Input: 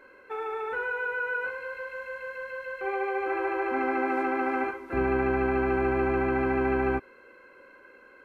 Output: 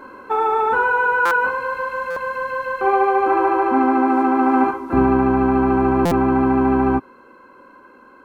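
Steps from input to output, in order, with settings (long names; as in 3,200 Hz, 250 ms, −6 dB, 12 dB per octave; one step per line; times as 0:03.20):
octave-band graphic EQ 125/250/500/1,000/2,000 Hz +4/+9/−6/+11/−11 dB
speech leveller within 5 dB 0.5 s
buffer that repeats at 0:01.25/0:02.10/0:06.05, samples 256, times 10
level +8 dB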